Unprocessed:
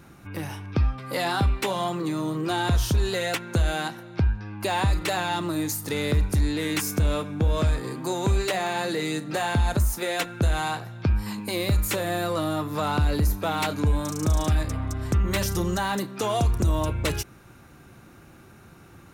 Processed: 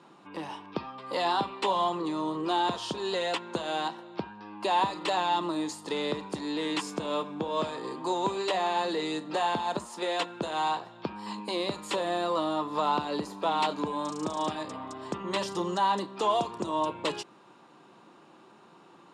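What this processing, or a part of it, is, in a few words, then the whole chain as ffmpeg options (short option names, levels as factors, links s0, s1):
television speaker: -af "highpass=f=210:w=0.5412,highpass=f=210:w=1.3066,equalizer=f=250:t=q:w=4:g=-6,equalizer=f=980:t=q:w=4:g=9,equalizer=f=1500:t=q:w=4:g=-7,equalizer=f=2200:t=q:w=4:g=-7,equalizer=f=3100:t=q:w=4:g=3,equalizer=f=6000:t=q:w=4:g=-10,lowpass=f=7100:w=0.5412,lowpass=f=7100:w=1.3066,volume=0.794"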